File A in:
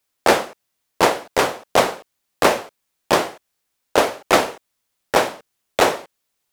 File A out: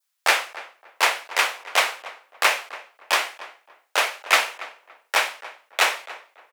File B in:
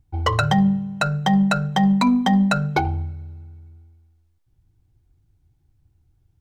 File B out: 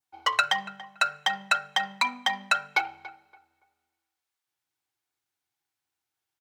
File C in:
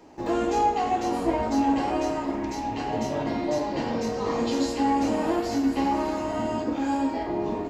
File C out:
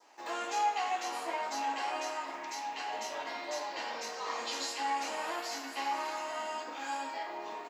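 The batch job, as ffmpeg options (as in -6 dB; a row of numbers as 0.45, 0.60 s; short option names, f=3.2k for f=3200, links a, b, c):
-filter_complex "[0:a]highpass=1.1k,adynamicequalizer=threshold=0.0112:dfrequency=2400:dqfactor=1.7:tfrequency=2400:tqfactor=1.7:attack=5:release=100:ratio=0.375:range=3.5:mode=boostabove:tftype=bell,asplit=2[a][b];[b]adelay=284,lowpass=f=1.9k:p=1,volume=-15.5dB,asplit=2[c][d];[d]adelay=284,lowpass=f=1.9k:p=1,volume=0.26,asplit=2[e][f];[f]adelay=284,lowpass=f=1.9k:p=1,volume=0.26[g];[a][c][e][g]amix=inputs=4:normalize=0,volume=-1dB"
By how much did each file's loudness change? -2.5, -7.0, -10.0 LU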